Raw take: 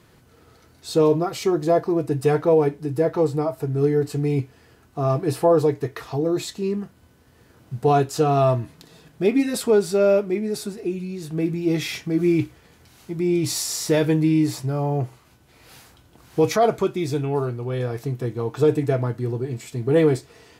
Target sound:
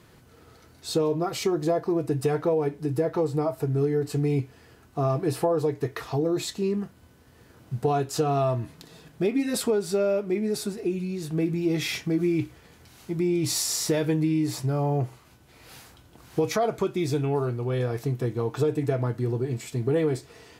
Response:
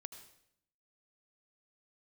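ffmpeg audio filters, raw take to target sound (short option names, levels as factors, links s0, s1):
-af "acompressor=threshold=0.0891:ratio=5"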